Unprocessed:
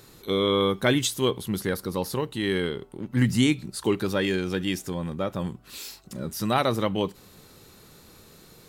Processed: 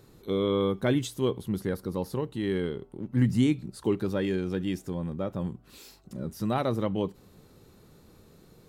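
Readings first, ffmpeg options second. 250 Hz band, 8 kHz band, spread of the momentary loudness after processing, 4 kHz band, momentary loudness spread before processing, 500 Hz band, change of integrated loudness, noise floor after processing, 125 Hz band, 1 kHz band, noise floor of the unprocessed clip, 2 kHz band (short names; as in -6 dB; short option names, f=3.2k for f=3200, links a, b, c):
-2.0 dB, -12.0 dB, 10 LU, -11.0 dB, 12 LU, -3.0 dB, -3.0 dB, -57 dBFS, -1.0 dB, -6.5 dB, -52 dBFS, -9.5 dB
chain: -af "tiltshelf=f=970:g=5.5,volume=-6.5dB"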